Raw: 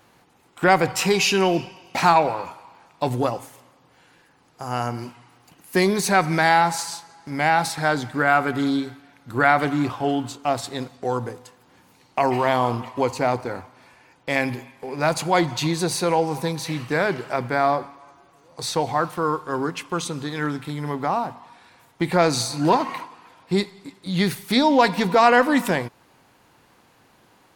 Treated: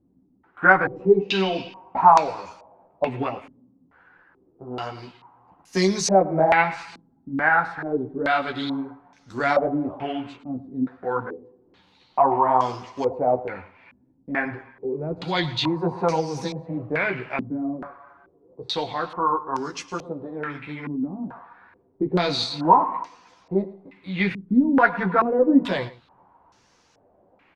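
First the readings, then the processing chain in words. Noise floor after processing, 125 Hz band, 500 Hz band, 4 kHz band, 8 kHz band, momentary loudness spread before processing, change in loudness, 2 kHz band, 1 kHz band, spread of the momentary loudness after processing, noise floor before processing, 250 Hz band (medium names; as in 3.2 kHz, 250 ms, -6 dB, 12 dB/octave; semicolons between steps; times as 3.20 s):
-62 dBFS, -4.5 dB, -1.5 dB, -3.0 dB, -7.0 dB, 14 LU, -1.0 dB, -1.0 dB, -1.0 dB, 17 LU, -58 dBFS, -1.0 dB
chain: chorus voices 6, 1.3 Hz, delay 13 ms, depth 3 ms; delay 110 ms -17.5 dB; step-sequenced low-pass 2.3 Hz 250–5900 Hz; trim -2.5 dB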